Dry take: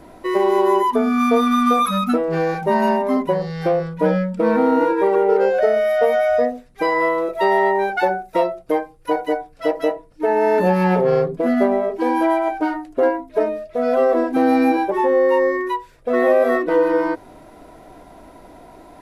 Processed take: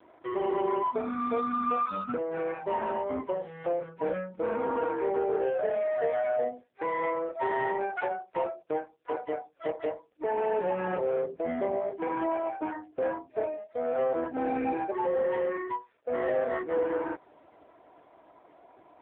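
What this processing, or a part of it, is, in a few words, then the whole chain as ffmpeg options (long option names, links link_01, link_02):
telephone: -af "highpass=340,lowpass=3600,asoftclip=type=tanh:threshold=-10dB,volume=-8.5dB" -ar 8000 -c:a libopencore_amrnb -b:a 5150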